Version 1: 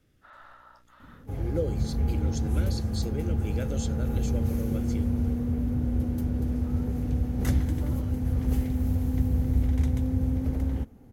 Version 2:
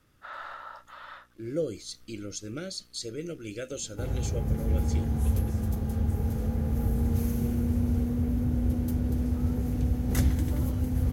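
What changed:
first sound +10.0 dB; second sound: entry +2.70 s; master: add high shelf 4000 Hz +6 dB

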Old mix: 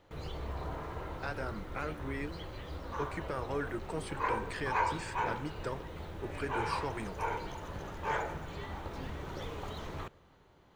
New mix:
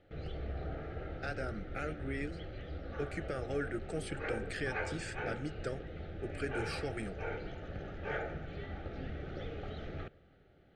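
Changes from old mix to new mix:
background: add air absorption 250 m; master: add Butterworth band-stop 1000 Hz, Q 2

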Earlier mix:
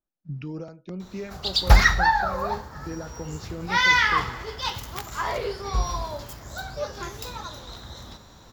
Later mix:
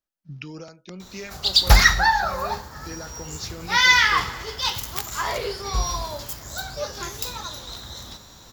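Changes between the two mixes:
speech: add tilt shelf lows -5 dB, about 920 Hz; master: add high shelf 3200 Hz +10.5 dB

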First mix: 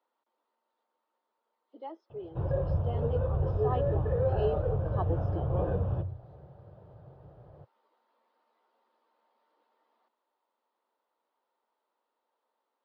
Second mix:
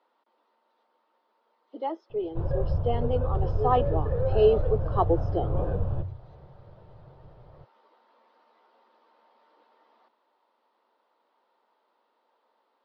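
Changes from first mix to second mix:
speech +11.0 dB; master: remove HPF 63 Hz

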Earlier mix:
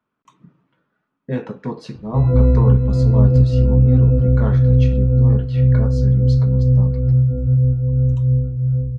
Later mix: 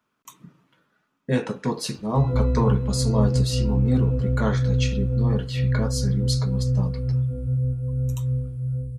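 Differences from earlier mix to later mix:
background -9.0 dB; master: remove tape spacing loss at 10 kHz 26 dB

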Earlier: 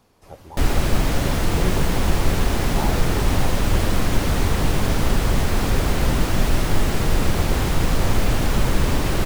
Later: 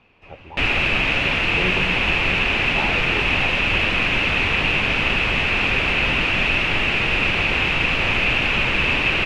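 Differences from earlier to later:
background: add tilt +2 dB/oct; master: add synth low-pass 2600 Hz, resonance Q 8.3

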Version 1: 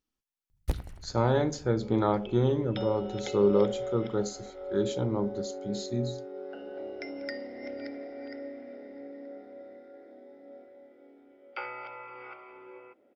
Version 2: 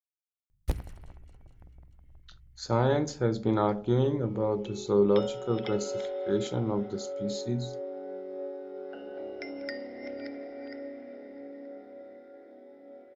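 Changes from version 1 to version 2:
speech: entry +1.55 s; second sound: entry +2.40 s

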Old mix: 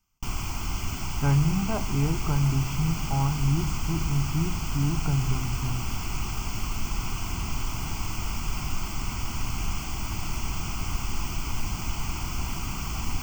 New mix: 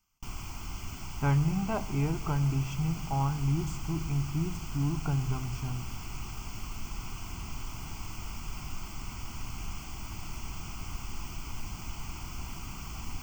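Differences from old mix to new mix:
speech: add low shelf 380 Hz -4.5 dB; background -9.0 dB

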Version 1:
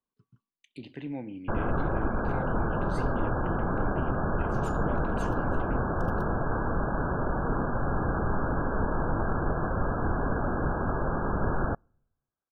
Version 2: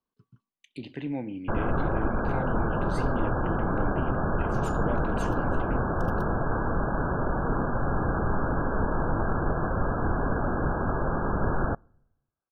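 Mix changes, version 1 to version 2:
speech +4.0 dB; background: send +7.5 dB

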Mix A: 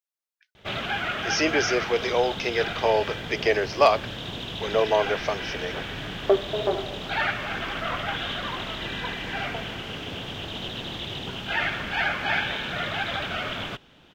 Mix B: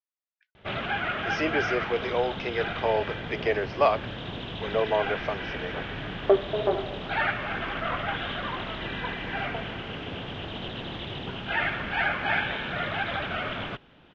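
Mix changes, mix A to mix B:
speech -3.5 dB; master: add LPF 2700 Hz 12 dB/oct

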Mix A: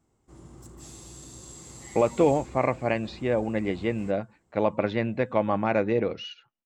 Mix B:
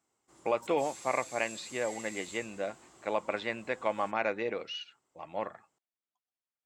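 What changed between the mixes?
speech: entry -1.50 s; master: add HPF 1200 Hz 6 dB/oct

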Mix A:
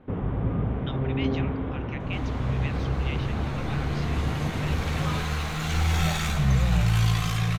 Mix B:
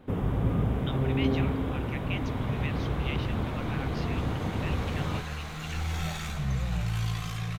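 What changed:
first sound: remove LPF 2400 Hz 12 dB/oct; second sound -8.0 dB

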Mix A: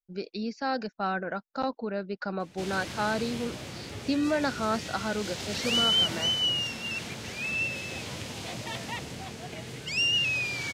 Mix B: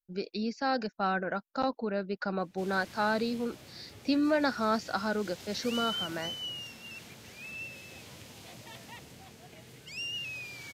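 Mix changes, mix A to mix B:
background -12.0 dB; master: add bell 14000 Hz +12 dB 0.59 oct

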